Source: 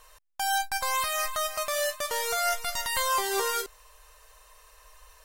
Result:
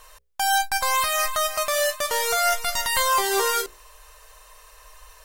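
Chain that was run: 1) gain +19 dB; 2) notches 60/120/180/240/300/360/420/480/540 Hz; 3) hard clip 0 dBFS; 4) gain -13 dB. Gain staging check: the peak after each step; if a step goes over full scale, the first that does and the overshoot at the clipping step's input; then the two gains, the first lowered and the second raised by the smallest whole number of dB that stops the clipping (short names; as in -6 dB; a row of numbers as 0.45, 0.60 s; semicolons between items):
+5.5, +5.5, 0.0, -13.0 dBFS; step 1, 5.5 dB; step 1 +13 dB, step 4 -7 dB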